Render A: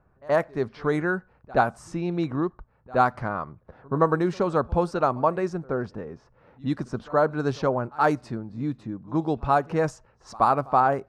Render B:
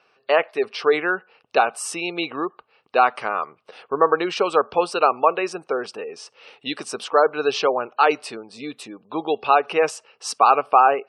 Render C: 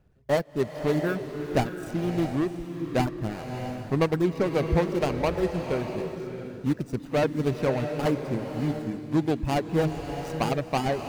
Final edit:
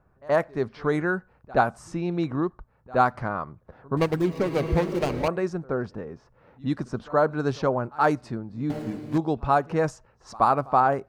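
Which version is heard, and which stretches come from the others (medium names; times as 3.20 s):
A
3.97–5.28 s: from C
8.70–9.18 s: from C
not used: B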